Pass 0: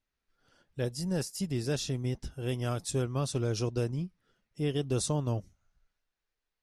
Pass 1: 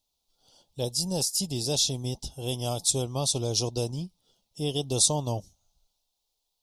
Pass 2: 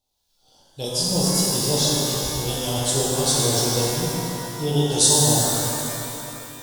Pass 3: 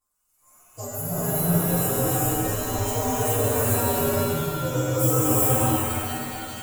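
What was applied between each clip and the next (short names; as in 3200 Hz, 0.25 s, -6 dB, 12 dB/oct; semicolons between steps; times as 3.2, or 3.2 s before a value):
EQ curve 390 Hz 0 dB, 860 Hz +9 dB, 1700 Hz -19 dB, 3500 Hz +13 dB
harmonic tremolo 1.7 Hz, depth 50%, crossover 1200 Hz; shimmer reverb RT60 3 s, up +12 st, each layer -8 dB, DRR -6 dB; gain +3 dB
inharmonic rescaling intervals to 128%; non-linear reverb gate 0.44 s rising, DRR -4.5 dB; mismatched tape noise reduction encoder only; gain -3 dB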